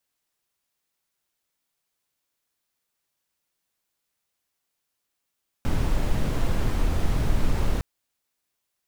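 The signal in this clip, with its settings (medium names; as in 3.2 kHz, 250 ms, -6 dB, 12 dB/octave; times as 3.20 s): noise brown, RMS -21 dBFS 2.16 s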